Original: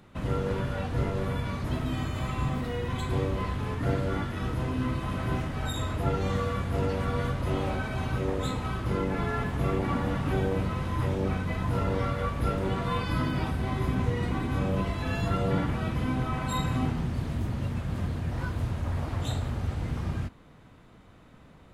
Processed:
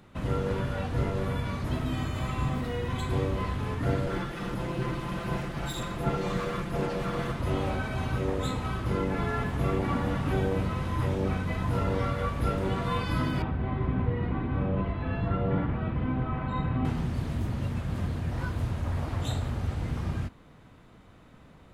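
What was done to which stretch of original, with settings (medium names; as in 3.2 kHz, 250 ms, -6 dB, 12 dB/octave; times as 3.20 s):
4.06–7.40 s: comb filter that takes the minimum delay 5.8 ms
13.42–16.85 s: distance through air 460 m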